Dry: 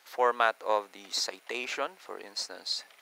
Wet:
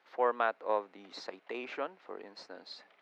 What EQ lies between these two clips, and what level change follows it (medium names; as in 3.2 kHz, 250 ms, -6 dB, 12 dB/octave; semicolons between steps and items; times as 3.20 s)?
three-band isolator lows -14 dB, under 170 Hz, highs -14 dB, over 4.7 kHz; RIAA curve playback; -5.0 dB